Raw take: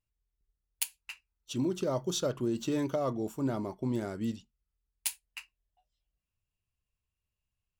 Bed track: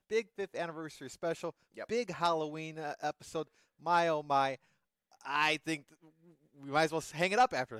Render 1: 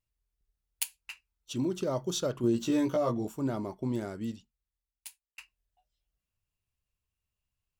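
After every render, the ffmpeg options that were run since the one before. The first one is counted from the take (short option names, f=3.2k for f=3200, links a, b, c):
-filter_complex "[0:a]asettb=1/sr,asplit=3[a][b][c];[a]atrim=end=2.424[d];[b]atrim=start=2.42:end=3.25,asetpts=PTS-STARTPTS,afade=t=in:d=0.004:c=qsin,afade=t=out:st=0.826:d=0.004:c=qsin,asplit=2[e][f];[f]adelay=17,volume=-2dB[g];[e][g]amix=inputs=2:normalize=0,atrim=end_sample=36603[h];[c]atrim=start=3.246[i];[d][h]acrossfade=d=0.004:c1=hsin:c2=qsin[j];[j][i]acrossfade=d=0.004:c1=qsin:c2=hsin,asplit=2[k][l];[k]atrim=end=5.38,asetpts=PTS-STARTPTS,afade=t=out:st=3.93:d=1.45[m];[l]atrim=start=5.38,asetpts=PTS-STARTPTS,afade=t=in:d=0.004:c=hsin[n];[m][n]concat=n=2:v=0:a=1"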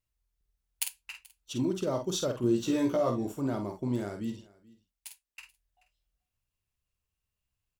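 -filter_complex "[0:a]asplit=2[a][b];[b]adelay=49,volume=-7dB[c];[a][c]amix=inputs=2:normalize=0,aecho=1:1:432:0.0668"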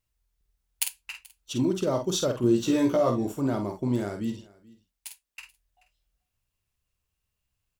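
-af "volume=4.5dB"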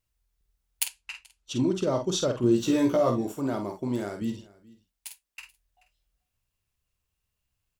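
-filter_complex "[0:a]asplit=3[a][b][c];[a]afade=t=out:st=0.86:d=0.02[d];[b]lowpass=8.2k,afade=t=in:st=0.86:d=0.02,afade=t=out:st=2.5:d=0.02[e];[c]afade=t=in:st=2.5:d=0.02[f];[d][e][f]amix=inputs=3:normalize=0,asettb=1/sr,asplit=3[g][h][i];[g]atrim=end=3.214[j];[h]atrim=start=3.21:end=4.22,asetpts=PTS-STARTPTS,afade=t=in:d=0.004:c=qsin,afade=t=out:st=1.006:d=0.004:c=qsin,lowshelf=f=160:g=-9[k];[i]atrim=start=4.216[l];[j][k]acrossfade=d=0.004:c1=hsin:c2=qsin[m];[m][l]acrossfade=d=0.004:c1=qsin:c2=hsin"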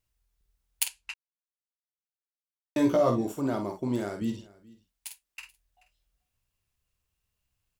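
-filter_complex "[0:a]asplit=3[a][b][c];[a]atrim=end=1.14,asetpts=PTS-STARTPTS,afade=t=out:st=1.136:d=0.004:c=hsin[d];[b]atrim=start=1.14:end=2.76,asetpts=PTS-STARTPTS,volume=0[e];[c]atrim=start=2.76,asetpts=PTS-STARTPTS,afade=t=in:d=0.004:c=hsin[f];[d][e][f]concat=n=3:v=0:a=1"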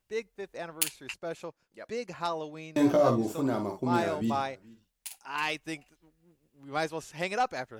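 -filter_complex "[1:a]volume=-1.5dB[a];[0:a][a]amix=inputs=2:normalize=0"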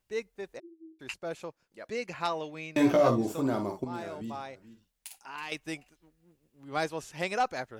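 -filter_complex "[0:a]asplit=3[a][b][c];[a]afade=t=out:st=0.58:d=0.02[d];[b]asuperpass=centerf=350:order=20:qfactor=5.4,afade=t=in:st=0.58:d=0.02,afade=t=out:st=0.99:d=0.02[e];[c]afade=t=in:st=0.99:d=0.02[f];[d][e][f]amix=inputs=3:normalize=0,asettb=1/sr,asplit=3[g][h][i];[g]atrim=end=1.954[j];[h]atrim=start=1.95:end=3.08,asetpts=PTS-STARTPTS,afade=t=in:d=0.004:c=qsin,afade=t=out:st=1.126:d=0.004:c=qsin,equalizer=f=2.3k:w=1.5:g=7[k];[i]atrim=start=3.076[l];[j][k]acrossfade=d=0.004:c1=hsin:c2=qsin[m];[m][l]acrossfade=d=0.004:c1=qsin:c2=hsin,asettb=1/sr,asplit=3[n][o][p];[n]atrim=end=3.844[q];[o]atrim=start=3.84:end=5.52,asetpts=PTS-STARTPTS,afade=t=in:d=0.004:c=qsin,afade=t=out:st=1.676:d=0.004:c=qsin,acompressor=threshold=-42dB:ratio=2:attack=3.2:release=140:knee=1:detection=peak[r];[p]atrim=start=5.516[s];[q][r]acrossfade=d=0.004:c1=hsin:c2=qsin[t];[t][s]acrossfade=d=0.004:c1=qsin:c2=hsin"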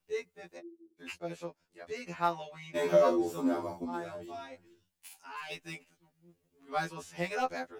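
-filter_complex "[0:a]acrossover=split=240|1400|2400[a][b][c][d];[d]asoftclip=type=tanh:threshold=-39dB[e];[a][b][c][e]amix=inputs=4:normalize=0,afftfilt=real='re*2*eq(mod(b,4),0)':imag='im*2*eq(mod(b,4),0)':win_size=2048:overlap=0.75"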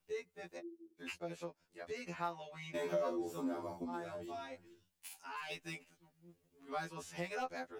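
-af "acompressor=threshold=-43dB:ratio=2"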